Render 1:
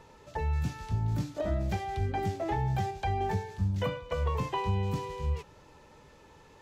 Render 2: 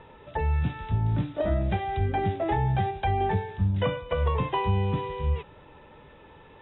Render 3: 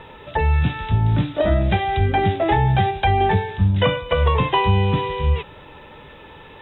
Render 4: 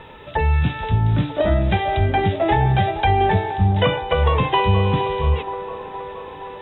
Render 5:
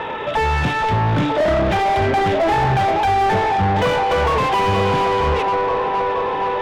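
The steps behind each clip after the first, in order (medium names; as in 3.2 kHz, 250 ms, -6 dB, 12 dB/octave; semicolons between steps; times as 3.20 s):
Chebyshev low-pass 3.8 kHz, order 10; trim +5.5 dB
treble shelf 2.4 kHz +9.5 dB; trim +7.5 dB
feedback echo behind a band-pass 470 ms, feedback 70%, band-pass 680 Hz, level -10 dB
overdrive pedal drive 32 dB, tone 1.2 kHz, clips at -5.5 dBFS; trim -3.5 dB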